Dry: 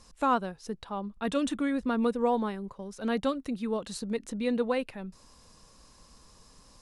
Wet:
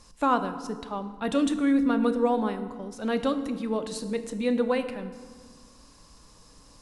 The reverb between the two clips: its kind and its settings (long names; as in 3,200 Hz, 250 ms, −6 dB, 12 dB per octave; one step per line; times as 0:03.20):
feedback delay network reverb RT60 1.6 s, low-frequency decay 1.4×, high-frequency decay 0.65×, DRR 8.5 dB
level +2 dB